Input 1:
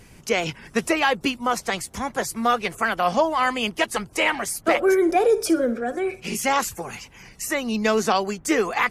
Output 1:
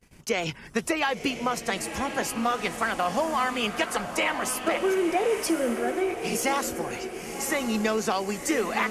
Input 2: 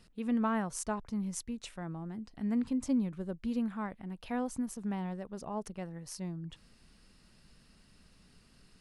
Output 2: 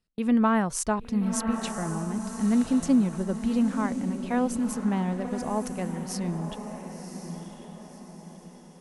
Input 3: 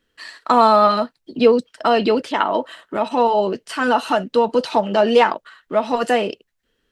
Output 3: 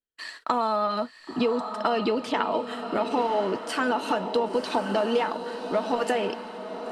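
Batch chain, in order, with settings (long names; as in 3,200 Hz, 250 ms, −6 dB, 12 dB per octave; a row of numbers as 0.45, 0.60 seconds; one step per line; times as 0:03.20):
noise gate −47 dBFS, range −28 dB
downward compressor 6 to 1, threshold −20 dBFS
on a send: feedback delay with all-pass diffusion 1,052 ms, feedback 45%, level −8 dB
on the sum: loudness normalisation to −27 LKFS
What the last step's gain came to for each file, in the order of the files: −1.5, +8.5, −2.0 decibels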